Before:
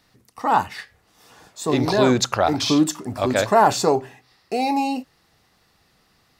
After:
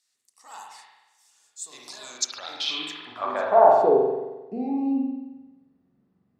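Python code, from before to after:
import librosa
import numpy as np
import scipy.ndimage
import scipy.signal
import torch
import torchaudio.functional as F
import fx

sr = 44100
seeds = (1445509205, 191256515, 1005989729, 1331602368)

y = fx.filter_sweep_bandpass(x, sr, from_hz=7700.0, to_hz=210.0, start_s=2.09, end_s=4.31, q=2.7)
y = fx.rev_spring(y, sr, rt60_s=1.1, pass_ms=(44,), chirp_ms=30, drr_db=-1.5)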